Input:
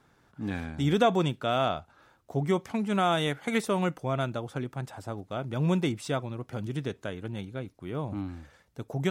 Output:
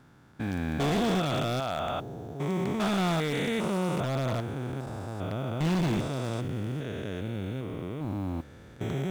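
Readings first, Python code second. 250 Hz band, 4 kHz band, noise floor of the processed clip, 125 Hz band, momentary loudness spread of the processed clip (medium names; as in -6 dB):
+0.5 dB, 0.0 dB, -49 dBFS, +1.5 dB, 9 LU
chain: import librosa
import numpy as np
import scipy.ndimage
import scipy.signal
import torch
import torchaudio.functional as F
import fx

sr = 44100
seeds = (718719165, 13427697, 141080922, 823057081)

p1 = fx.spec_steps(x, sr, hold_ms=400)
p2 = (np.mod(10.0 ** (25.0 / 20.0) * p1 + 1.0, 2.0) - 1.0) / 10.0 ** (25.0 / 20.0)
p3 = p1 + (p2 * librosa.db_to_amplitude(-5.5))
p4 = fx.mod_noise(p3, sr, seeds[0], snr_db=34)
p5 = fx.slew_limit(p4, sr, full_power_hz=92.0)
y = p5 * librosa.db_to_amplitude(1.0)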